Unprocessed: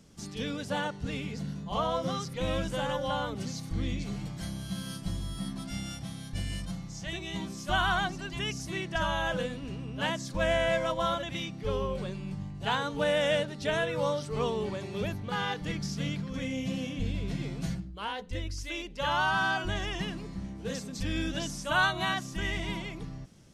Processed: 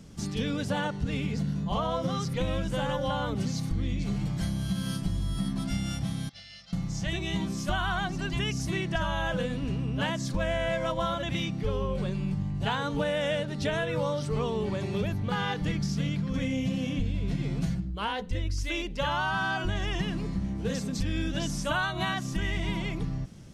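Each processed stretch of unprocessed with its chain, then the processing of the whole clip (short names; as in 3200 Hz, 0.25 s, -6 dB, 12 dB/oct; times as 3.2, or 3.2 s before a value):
6.29–6.73 band-pass 4700 Hz, Q 1.3 + air absorption 150 m + comb 1.5 ms, depth 74%
whole clip: tone controls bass +5 dB, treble -2 dB; compressor, threshold -31 dBFS; gain +5.5 dB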